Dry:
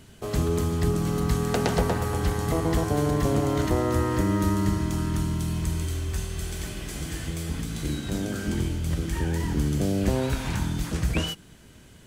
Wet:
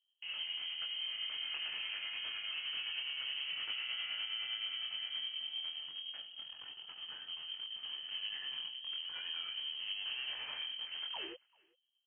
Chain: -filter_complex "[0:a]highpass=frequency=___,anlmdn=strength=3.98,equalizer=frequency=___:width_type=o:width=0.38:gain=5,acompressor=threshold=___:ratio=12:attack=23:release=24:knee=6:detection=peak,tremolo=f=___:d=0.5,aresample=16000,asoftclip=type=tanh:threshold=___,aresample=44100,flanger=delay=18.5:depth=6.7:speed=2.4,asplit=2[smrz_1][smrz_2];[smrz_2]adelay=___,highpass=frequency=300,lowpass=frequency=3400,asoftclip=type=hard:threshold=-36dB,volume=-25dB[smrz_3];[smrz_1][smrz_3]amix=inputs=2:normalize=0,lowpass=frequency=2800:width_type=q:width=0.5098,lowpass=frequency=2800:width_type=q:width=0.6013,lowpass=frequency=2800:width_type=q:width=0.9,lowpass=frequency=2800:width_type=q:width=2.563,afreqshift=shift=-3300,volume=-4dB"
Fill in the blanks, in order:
140, 640, -30dB, 9.7, -28dB, 390